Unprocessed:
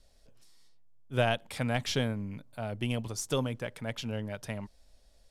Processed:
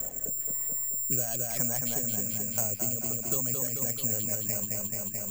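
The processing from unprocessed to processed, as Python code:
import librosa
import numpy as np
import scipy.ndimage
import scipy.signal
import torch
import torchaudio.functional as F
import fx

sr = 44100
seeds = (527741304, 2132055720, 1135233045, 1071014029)

p1 = fx.rattle_buzz(x, sr, strikes_db=-43.0, level_db=-33.0)
p2 = scipy.signal.sosfilt(scipy.signal.bessel(2, 1700.0, 'lowpass', norm='mag', fs=sr, output='sos'), p1)
p3 = fx.over_compress(p2, sr, threshold_db=-35.0, ratio=-1.0)
p4 = p2 + (p3 * 10.0 ** (0.5 / 20.0))
p5 = fx.dereverb_blind(p4, sr, rt60_s=1.9)
p6 = fx.rotary_switch(p5, sr, hz=1.1, then_hz=7.5, switch_at_s=3.33)
p7 = p6 + fx.echo_feedback(p6, sr, ms=217, feedback_pct=54, wet_db=-4.5, dry=0)
p8 = (np.kron(scipy.signal.resample_poly(p7, 1, 6), np.eye(6)[0]) * 6)[:len(p7)]
p9 = fx.band_squash(p8, sr, depth_pct=100)
y = p9 * 10.0 ** (-7.0 / 20.0)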